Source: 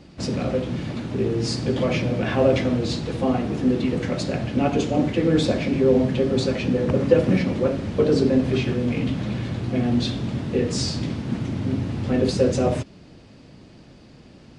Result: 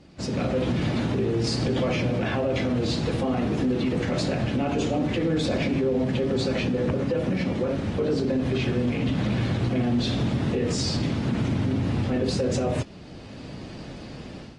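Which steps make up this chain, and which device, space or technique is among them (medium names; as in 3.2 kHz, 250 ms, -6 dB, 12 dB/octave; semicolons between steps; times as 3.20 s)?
low-bitrate web radio (level rider gain up to 13.5 dB; peak limiter -12 dBFS, peak gain reduction 11 dB; trim -5 dB; AAC 32 kbps 44.1 kHz)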